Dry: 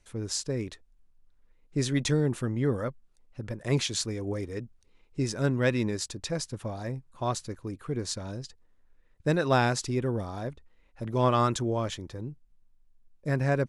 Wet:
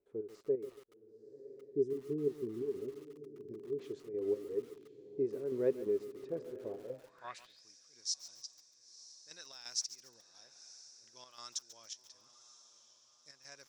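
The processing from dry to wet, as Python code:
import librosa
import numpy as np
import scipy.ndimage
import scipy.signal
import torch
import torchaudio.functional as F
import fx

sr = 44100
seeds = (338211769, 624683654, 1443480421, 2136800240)

y = fx.spec_box(x, sr, start_s=1.4, length_s=2.39, low_hz=440.0, high_hz=4800.0, gain_db=-20)
y = fx.chopper(y, sr, hz=2.9, depth_pct=65, duty_pct=60)
y = fx.echo_diffused(y, sr, ms=1001, feedback_pct=49, wet_db=-14.5)
y = fx.filter_sweep_bandpass(y, sr, from_hz=410.0, to_hz=5600.0, start_s=6.83, end_s=7.64, q=7.5)
y = fx.echo_crushed(y, sr, ms=140, feedback_pct=35, bits=9, wet_db=-14.0)
y = F.gain(torch.from_numpy(y), 5.0).numpy()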